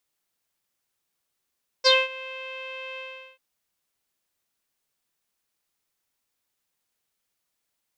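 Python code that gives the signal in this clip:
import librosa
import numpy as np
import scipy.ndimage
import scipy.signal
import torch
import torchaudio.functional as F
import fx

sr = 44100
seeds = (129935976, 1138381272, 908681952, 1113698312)

y = fx.sub_voice(sr, note=72, wave='saw', cutoff_hz=2800.0, q=11.0, env_oct=1.0, env_s=0.11, attack_ms=28.0, decay_s=0.21, sustain_db=-21.5, release_s=0.4, note_s=1.14, slope=12)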